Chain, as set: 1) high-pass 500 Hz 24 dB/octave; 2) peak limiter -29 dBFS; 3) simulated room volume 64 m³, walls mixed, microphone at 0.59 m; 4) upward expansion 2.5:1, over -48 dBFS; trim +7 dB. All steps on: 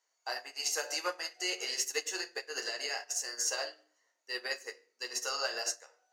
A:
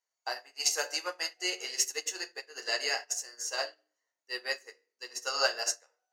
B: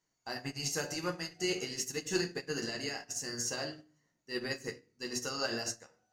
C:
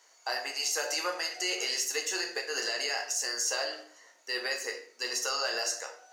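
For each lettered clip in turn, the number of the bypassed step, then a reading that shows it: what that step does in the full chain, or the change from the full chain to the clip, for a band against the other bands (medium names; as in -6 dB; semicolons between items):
2, mean gain reduction 2.0 dB; 1, 250 Hz band +16.0 dB; 4, crest factor change -3.5 dB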